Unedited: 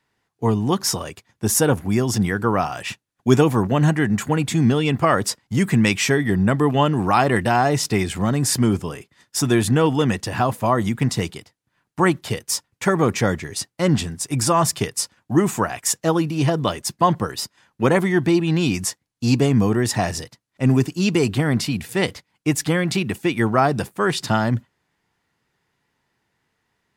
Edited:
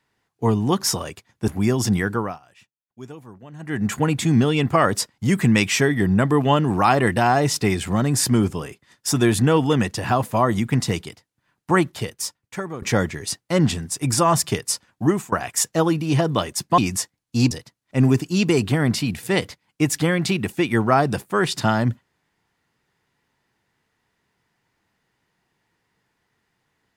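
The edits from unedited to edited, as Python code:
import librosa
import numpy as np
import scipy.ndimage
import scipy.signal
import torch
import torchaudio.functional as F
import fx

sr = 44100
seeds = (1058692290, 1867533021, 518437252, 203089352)

y = fx.edit(x, sr, fx.cut(start_s=1.48, length_s=0.29),
    fx.fade_down_up(start_s=2.35, length_s=1.86, db=-23.5, fade_s=0.33),
    fx.fade_out_to(start_s=12.0, length_s=1.11, floor_db=-17.5),
    fx.fade_out_to(start_s=15.33, length_s=0.28, floor_db=-21.0),
    fx.cut(start_s=17.07, length_s=1.59),
    fx.cut(start_s=19.39, length_s=0.78), tone=tone)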